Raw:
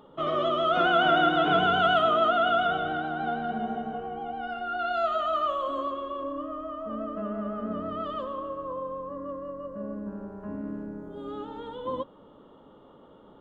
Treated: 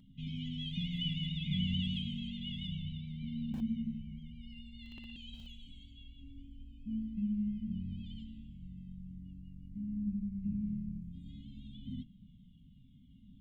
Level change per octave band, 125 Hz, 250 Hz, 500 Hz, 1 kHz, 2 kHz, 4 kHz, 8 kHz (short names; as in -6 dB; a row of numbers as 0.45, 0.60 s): +3.0 dB, -3.0 dB, under -40 dB, under -40 dB, -24.0 dB, -7.5 dB, n/a